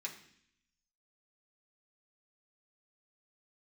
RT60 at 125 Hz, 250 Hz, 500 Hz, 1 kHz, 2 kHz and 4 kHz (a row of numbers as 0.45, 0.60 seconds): 0.95, 0.90, 0.65, 0.60, 0.80, 0.80 seconds